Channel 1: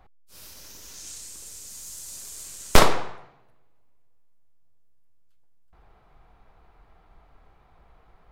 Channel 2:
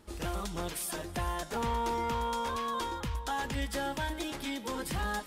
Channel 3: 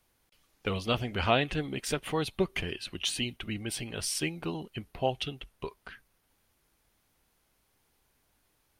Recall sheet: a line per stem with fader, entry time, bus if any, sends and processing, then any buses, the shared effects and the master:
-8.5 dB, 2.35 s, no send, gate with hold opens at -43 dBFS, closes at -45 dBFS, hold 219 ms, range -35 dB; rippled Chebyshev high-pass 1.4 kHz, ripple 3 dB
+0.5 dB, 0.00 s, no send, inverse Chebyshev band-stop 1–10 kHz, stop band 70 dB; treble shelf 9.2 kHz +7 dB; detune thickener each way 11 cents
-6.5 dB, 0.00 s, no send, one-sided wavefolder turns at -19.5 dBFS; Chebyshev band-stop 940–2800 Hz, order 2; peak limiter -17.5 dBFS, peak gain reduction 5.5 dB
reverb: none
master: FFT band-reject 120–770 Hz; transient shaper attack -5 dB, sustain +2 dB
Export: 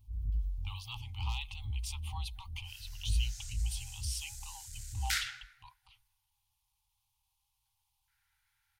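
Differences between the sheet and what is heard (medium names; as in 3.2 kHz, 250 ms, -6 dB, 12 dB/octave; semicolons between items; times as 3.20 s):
stem 1: missing gate with hold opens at -43 dBFS, closes at -45 dBFS, hold 219 ms, range -35 dB; stem 2 +0.5 dB -> +8.0 dB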